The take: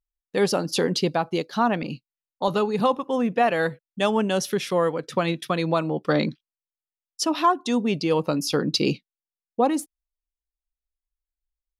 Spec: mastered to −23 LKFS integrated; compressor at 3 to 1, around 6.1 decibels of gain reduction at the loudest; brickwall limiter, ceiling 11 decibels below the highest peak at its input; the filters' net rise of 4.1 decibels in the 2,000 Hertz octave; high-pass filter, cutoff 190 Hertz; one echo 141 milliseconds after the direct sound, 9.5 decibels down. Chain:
high-pass filter 190 Hz
parametric band 2,000 Hz +5.5 dB
downward compressor 3 to 1, threshold −22 dBFS
brickwall limiter −21.5 dBFS
single-tap delay 141 ms −9.5 dB
level +8.5 dB

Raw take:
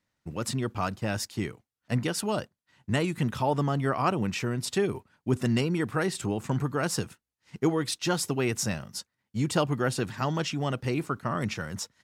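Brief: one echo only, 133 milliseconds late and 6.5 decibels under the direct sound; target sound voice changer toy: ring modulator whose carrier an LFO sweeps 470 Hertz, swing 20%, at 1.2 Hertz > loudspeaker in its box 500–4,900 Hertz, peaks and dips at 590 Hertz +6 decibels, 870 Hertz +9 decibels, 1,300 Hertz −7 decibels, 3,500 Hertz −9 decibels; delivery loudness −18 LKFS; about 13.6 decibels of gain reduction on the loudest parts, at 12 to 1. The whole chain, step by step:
downward compressor 12 to 1, threshold −34 dBFS
single-tap delay 133 ms −6.5 dB
ring modulator whose carrier an LFO sweeps 470 Hz, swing 20%, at 1.2 Hz
loudspeaker in its box 500–4,900 Hz, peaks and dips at 590 Hz +6 dB, 870 Hz +9 dB, 1,300 Hz −7 dB, 3,500 Hz −9 dB
level +22.5 dB

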